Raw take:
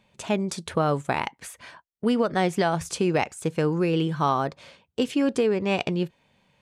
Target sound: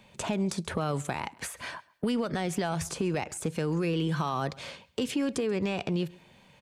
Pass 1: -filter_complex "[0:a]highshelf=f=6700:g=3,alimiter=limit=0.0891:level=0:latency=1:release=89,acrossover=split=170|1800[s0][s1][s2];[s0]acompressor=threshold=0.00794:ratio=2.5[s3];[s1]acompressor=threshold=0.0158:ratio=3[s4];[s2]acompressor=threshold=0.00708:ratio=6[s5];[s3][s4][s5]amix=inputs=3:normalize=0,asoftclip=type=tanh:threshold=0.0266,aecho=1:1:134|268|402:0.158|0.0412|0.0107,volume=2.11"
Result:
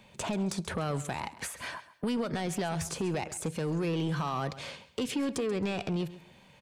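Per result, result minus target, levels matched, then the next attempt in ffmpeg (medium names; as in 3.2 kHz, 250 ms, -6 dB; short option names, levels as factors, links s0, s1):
saturation: distortion +12 dB; echo-to-direct +7.5 dB
-filter_complex "[0:a]highshelf=f=6700:g=3,alimiter=limit=0.0891:level=0:latency=1:release=89,acrossover=split=170|1800[s0][s1][s2];[s0]acompressor=threshold=0.00794:ratio=2.5[s3];[s1]acompressor=threshold=0.0158:ratio=3[s4];[s2]acompressor=threshold=0.00708:ratio=6[s5];[s3][s4][s5]amix=inputs=3:normalize=0,asoftclip=type=tanh:threshold=0.0708,aecho=1:1:134|268|402:0.158|0.0412|0.0107,volume=2.11"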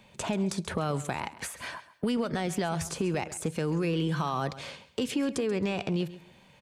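echo-to-direct +7.5 dB
-filter_complex "[0:a]highshelf=f=6700:g=3,alimiter=limit=0.0891:level=0:latency=1:release=89,acrossover=split=170|1800[s0][s1][s2];[s0]acompressor=threshold=0.00794:ratio=2.5[s3];[s1]acompressor=threshold=0.0158:ratio=3[s4];[s2]acompressor=threshold=0.00708:ratio=6[s5];[s3][s4][s5]amix=inputs=3:normalize=0,asoftclip=type=tanh:threshold=0.0708,aecho=1:1:134|268:0.0668|0.0174,volume=2.11"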